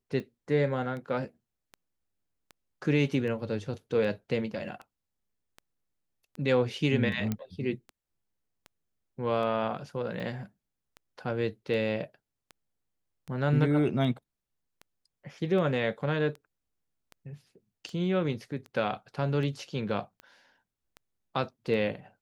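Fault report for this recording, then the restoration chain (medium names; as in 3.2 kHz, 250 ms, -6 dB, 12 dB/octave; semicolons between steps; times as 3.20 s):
tick 78 rpm -29 dBFS
7.32 s: pop -17 dBFS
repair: de-click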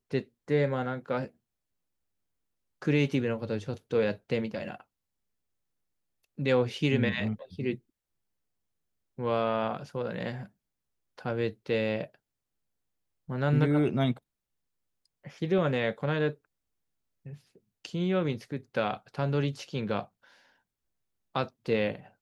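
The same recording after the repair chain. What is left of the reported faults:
nothing left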